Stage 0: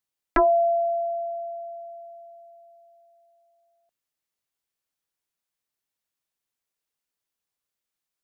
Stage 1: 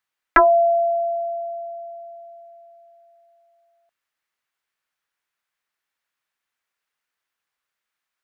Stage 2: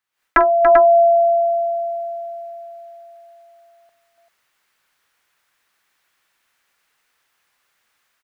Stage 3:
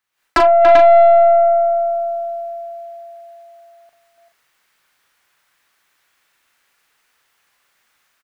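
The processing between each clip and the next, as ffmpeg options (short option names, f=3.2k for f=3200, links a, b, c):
-af "equalizer=f=1.6k:t=o:w=2.3:g=14.5,volume=-2.5dB"
-filter_complex "[0:a]dynaudnorm=f=120:g=3:m=15dB,asplit=2[a][b];[b]aecho=0:1:45|286|391:0.2|0.398|0.473[c];[a][c]amix=inputs=2:normalize=0,volume=-1dB"
-filter_complex "[0:a]aeval=exprs='(tanh(3.55*val(0)+0.3)-tanh(0.3))/3.55':c=same,asplit=2[a][b];[b]adelay=38,volume=-7dB[c];[a][c]amix=inputs=2:normalize=0,volume=4dB"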